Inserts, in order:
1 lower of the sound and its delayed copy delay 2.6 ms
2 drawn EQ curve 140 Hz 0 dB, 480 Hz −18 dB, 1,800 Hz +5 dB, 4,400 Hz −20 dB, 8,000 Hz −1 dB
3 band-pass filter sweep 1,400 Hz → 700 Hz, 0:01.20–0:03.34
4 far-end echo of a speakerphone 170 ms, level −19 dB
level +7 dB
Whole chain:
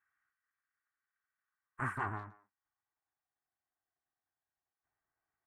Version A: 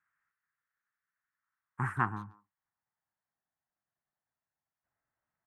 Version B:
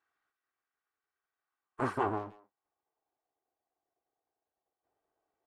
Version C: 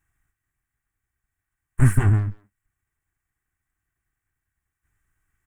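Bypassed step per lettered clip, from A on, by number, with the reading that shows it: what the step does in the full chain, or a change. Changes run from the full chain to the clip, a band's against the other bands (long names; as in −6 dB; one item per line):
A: 1, 500 Hz band −5.0 dB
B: 2, 500 Hz band +12.0 dB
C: 3, 1 kHz band −18.5 dB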